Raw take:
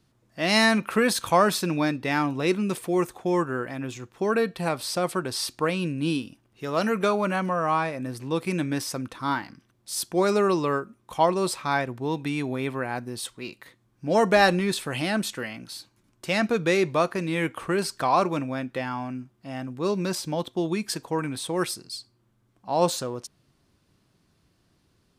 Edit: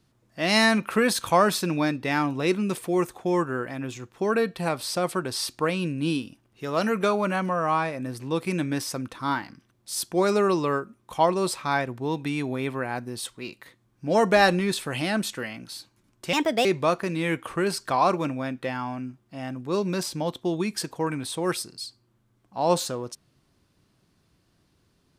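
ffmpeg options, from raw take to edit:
-filter_complex "[0:a]asplit=3[s0][s1][s2];[s0]atrim=end=16.334[s3];[s1]atrim=start=16.33:end=16.77,asetpts=PTS-STARTPTS,asetrate=60417,aresample=44100[s4];[s2]atrim=start=16.766[s5];[s3][s4]acrossfade=d=0.004:c1=hsin:c2=hsin[s6];[s6][s5]acrossfade=d=0.004:c1=hsin:c2=hsin"

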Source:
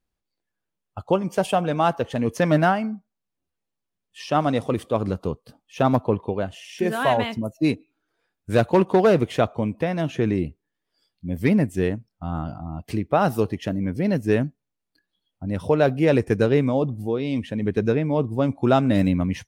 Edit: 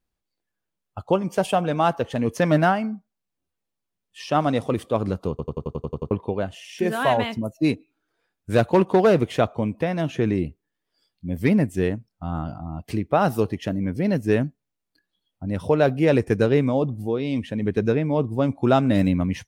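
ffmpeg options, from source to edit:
-filter_complex "[0:a]asplit=10[s0][s1][s2][s3][s4][s5][s6][s7][s8][s9];[s0]atrim=end=5.392[s10];[s1]atrim=start=5.298:end=5.392[s11];[s2]atrim=start=5.298:end=5.392[s12];[s3]atrim=start=5.298:end=5.392[s13];[s4]atrim=start=5.298:end=5.392[s14];[s5]atrim=start=5.298:end=5.392[s15];[s6]atrim=start=5.298:end=5.392[s16];[s7]atrim=start=5.298:end=5.392[s17];[s8]atrim=start=5.298:end=5.392[s18];[s9]atrim=start=6.108[s19];[s10][s11]acrossfade=d=0.004:c1=hsin:c2=hsin[s20];[s20][s12]acrossfade=d=0.004:c1=hsin:c2=hsin[s21];[s21][s13]acrossfade=d=0.004:c1=hsin:c2=hsin[s22];[s22][s14]acrossfade=d=0.004:c1=hsin:c2=hsin[s23];[s23][s15]acrossfade=d=0.004:c1=hsin:c2=hsin[s24];[s24][s16]acrossfade=d=0.004:c1=hsin:c2=hsin[s25];[s25][s17]acrossfade=d=0.004:c1=hsin:c2=hsin[s26];[s26][s18]acrossfade=d=0.004:c1=hsin:c2=hsin[s27];[s27][s19]acrossfade=d=0.004:c1=hsin:c2=hsin"

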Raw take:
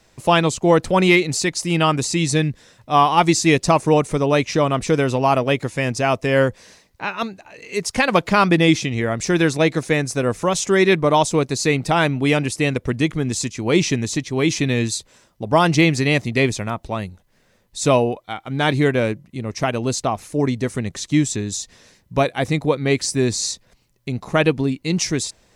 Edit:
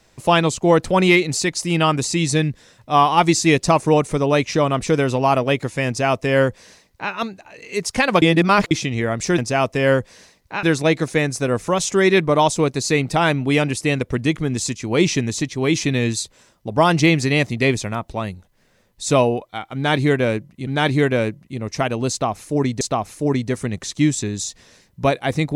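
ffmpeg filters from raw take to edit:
-filter_complex "[0:a]asplit=7[s0][s1][s2][s3][s4][s5][s6];[s0]atrim=end=8.222[s7];[s1]atrim=start=8.218:end=8.712,asetpts=PTS-STARTPTS,areverse[s8];[s2]atrim=start=8.708:end=9.382[s9];[s3]atrim=start=5.868:end=7.122[s10];[s4]atrim=start=9.378:end=19.422[s11];[s5]atrim=start=18.498:end=20.642[s12];[s6]atrim=start=19.938[s13];[s7][s8]acrossfade=d=0.004:c1=hsin:c2=hsin[s14];[s14][s9]acrossfade=d=0.004:c1=hsin:c2=hsin[s15];[s15][s10]acrossfade=d=0.004:c1=hsin:c2=hsin[s16];[s16][s11]acrossfade=d=0.004:c1=hsin:c2=hsin[s17];[s17][s12]acrossfade=d=0.004:c1=hsin:c2=hsin[s18];[s18][s13]acrossfade=d=0.004:c1=hsin:c2=hsin"

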